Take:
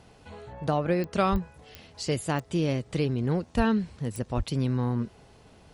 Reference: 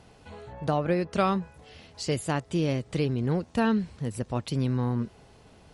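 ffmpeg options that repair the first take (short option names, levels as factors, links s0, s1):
-filter_complex "[0:a]adeclick=t=4,asplit=3[s0][s1][s2];[s0]afade=t=out:st=1.31:d=0.02[s3];[s1]highpass=f=140:w=0.5412,highpass=f=140:w=1.3066,afade=t=in:st=1.31:d=0.02,afade=t=out:st=1.43:d=0.02[s4];[s2]afade=t=in:st=1.43:d=0.02[s5];[s3][s4][s5]amix=inputs=3:normalize=0,asplit=3[s6][s7][s8];[s6]afade=t=out:st=3.56:d=0.02[s9];[s7]highpass=f=140:w=0.5412,highpass=f=140:w=1.3066,afade=t=in:st=3.56:d=0.02,afade=t=out:st=3.68:d=0.02[s10];[s8]afade=t=in:st=3.68:d=0.02[s11];[s9][s10][s11]amix=inputs=3:normalize=0,asplit=3[s12][s13][s14];[s12]afade=t=out:st=4.36:d=0.02[s15];[s13]highpass=f=140:w=0.5412,highpass=f=140:w=1.3066,afade=t=in:st=4.36:d=0.02,afade=t=out:st=4.48:d=0.02[s16];[s14]afade=t=in:st=4.48:d=0.02[s17];[s15][s16][s17]amix=inputs=3:normalize=0"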